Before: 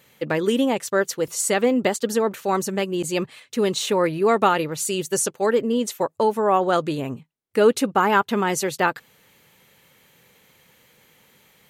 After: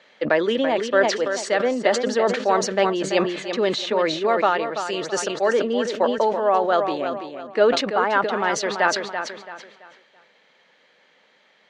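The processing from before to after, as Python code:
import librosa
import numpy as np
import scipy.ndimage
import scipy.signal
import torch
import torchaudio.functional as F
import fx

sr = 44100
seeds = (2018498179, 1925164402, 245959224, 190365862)

y = fx.low_shelf(x, sr, hz=320.0, db=-9.5)
y = fx.rider(y, sr, range_db=5, speed_s=0.5)
y = fx.cabinet(y, sr, low_hz=190.0, low_slope=24, high_hz=4800.0, hz=(630.0, 1700.0, 2600.0), db=(8, 4, -3))
y = fx.echo_feedback(y, sr, ms=334, feedback_pct=33, wet_db=-8.5)
y = fx.sustainer(y, sr, db_per_s=73.0)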